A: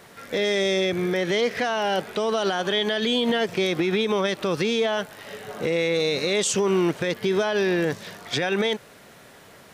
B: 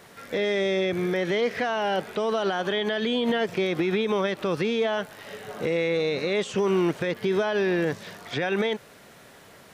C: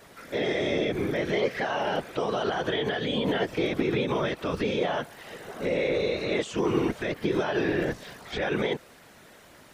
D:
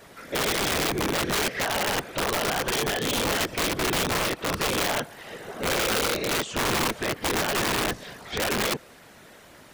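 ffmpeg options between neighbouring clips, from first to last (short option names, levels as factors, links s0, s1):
-filter_complex "[0:a]acrossover=split=3100[s0][s1];[s1]acompressor=threshold=0.00794:ratio=4:attack=1:release=60[s2];[s0][s2]amix=inputs=2:normalize=0,volume=0.841"
-af "afftfilt=real='hypot(re,im)*cos(2*PI*random(0))':imag='hypot(re,im)*sin(2*PI*random(1))':win_size=512:overlap=0.75,volume=1.58"
-af "aeval=exprs='(mod(12.6*val(0)+1,2)-1)/12.6':c=same,volume=1.33"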